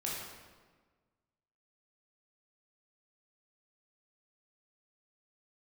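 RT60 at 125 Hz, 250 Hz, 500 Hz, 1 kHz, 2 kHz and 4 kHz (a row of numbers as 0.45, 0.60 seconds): 1.7, 1.6, 1.5, 1.4, 1.2, 1.0 seconds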